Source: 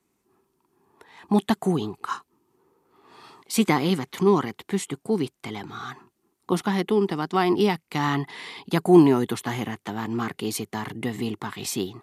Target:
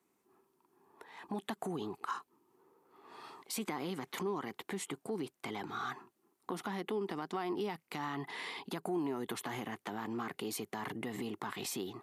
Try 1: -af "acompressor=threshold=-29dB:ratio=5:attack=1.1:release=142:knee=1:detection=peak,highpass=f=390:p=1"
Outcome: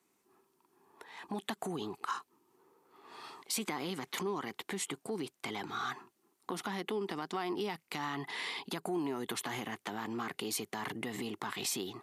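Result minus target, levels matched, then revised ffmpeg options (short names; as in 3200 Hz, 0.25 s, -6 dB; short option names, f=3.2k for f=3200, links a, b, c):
4000 Hz band +3.5 dB
-af "acompressor=threshold=-29dB:ratio=5:attack=1.1:release=142:knee=1:detection=peak,highpass=f=390:p=1,equalizer=f=5.5k:w=0.34:g=-6"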